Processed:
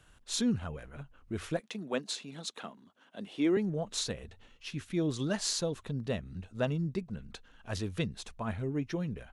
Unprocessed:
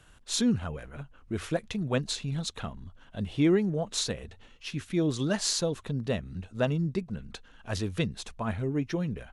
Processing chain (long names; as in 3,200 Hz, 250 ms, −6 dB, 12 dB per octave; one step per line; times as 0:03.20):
0:01.60–0:03.57: high-pass filter 220 Hz 24 dB per octave
level −4 dB